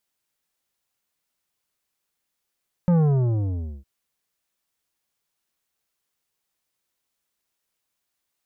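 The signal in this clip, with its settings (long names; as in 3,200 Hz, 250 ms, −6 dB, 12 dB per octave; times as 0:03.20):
bass drop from 180 Hz, over 0.96 s, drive 10.5 dB, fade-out 0.90 s, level −16 dB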